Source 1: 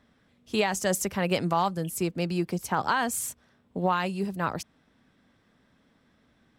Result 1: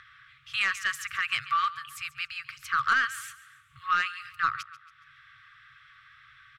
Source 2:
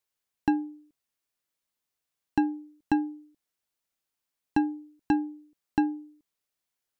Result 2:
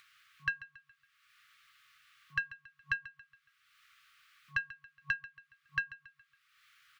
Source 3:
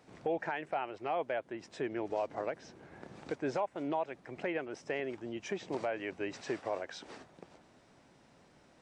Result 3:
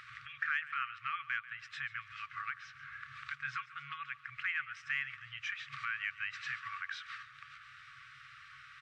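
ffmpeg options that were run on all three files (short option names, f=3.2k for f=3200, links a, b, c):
-filter_complex "[0:a]afftfilt=real='re*(1-between(b*sr/4096,140,1100))':imag='im*(1-between(b*sr/4096,140,1100))':win_size=4096:overlap=0.75,acrossover=split=240 3400:gain=0.1 1 0.0891[a][b][c];[a][b][c]amix=inputs=3:normalize=0,asplit=2[d][e];[e]acompressor=mode=upward:threshold=-43dB:ratio=2.5,volume=-2.5dB[f];[d][f]amix=inputs=2:normalize=0,aecho=1:1:139|278|417|556:0.141|0.0593|0.0249|0.0105,aeval=exprs='0.251*(cos(1*acos(clip(val(0)/0.251,-1,1)))-cos(1*PI/2))+0.0178*(cos(2*acos(clip(val(0)/0.251,-1,1)))-cos(2*PI/2))+0.0224*(cos(5*acos(clip(val(0)/0.251,-1,1)))-cos(5*PI/2))':c=same"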